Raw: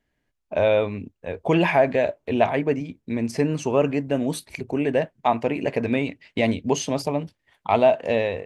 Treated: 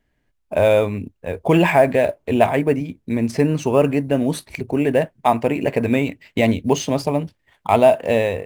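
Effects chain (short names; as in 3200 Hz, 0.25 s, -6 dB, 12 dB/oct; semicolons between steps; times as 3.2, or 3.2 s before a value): low shelf 110 Hz +5 dB; in parallel at -11.5 dB: sample-rate reducer 10000 Hz, jitter 0%; on the sum: gain +2 dB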